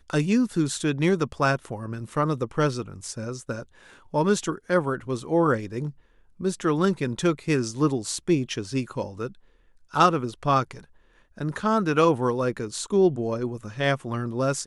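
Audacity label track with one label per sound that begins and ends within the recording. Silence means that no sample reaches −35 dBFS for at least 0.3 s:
4.140000	5.900000	sound
6.400000	9.280000	sound
9.940000	10.790000	sound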